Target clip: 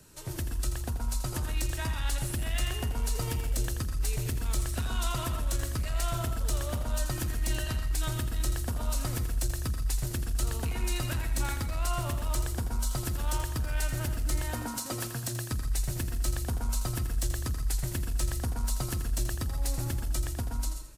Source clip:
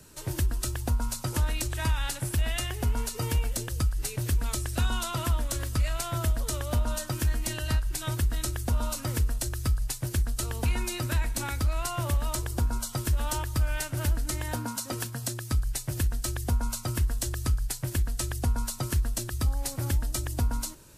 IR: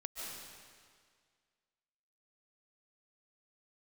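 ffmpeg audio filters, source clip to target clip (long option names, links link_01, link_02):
-filter_complex "[0:a]dynaudnorm=framelen=430:gausssize=7:maxgain=4dB,asoftclip=type=tanh:threshold=-20.5dB,acompressor=threshold=-26dB:ratio=6,aecho=1:1:83|166|249|332:0.335|0.111|0.0365|0.012[link_01];[1:a]atrim=start_sample=2205,atrim=end_sample=6174[link_02];[link_01][link_02]afir=irnorm=-1:irlink=0,volume=1.5dB"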